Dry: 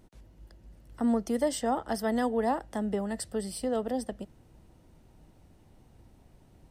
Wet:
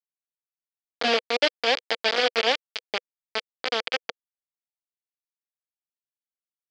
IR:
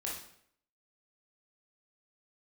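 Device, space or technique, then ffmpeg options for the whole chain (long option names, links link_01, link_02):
hand-held game console: -af "acrusher=bits=3:mix=0:aa=0.000001,highpass=470,equalizer=frequency=490:width_type=q:width=4:gain=6,equalizer=frequency=1000:width_type=q:width=4:gain=-7,equalizer=frequency=2300:width_type=q:width=4:gain=6,equalizer=frequency=3200:width_type=q:width=4:gain=8,equalizer=frequency=4700:width_type=q:width=4:gain=9,lowpass=frequency=5100:width=0.5412,lowpass=frequency=5100:width=1.3066,volume=3dB"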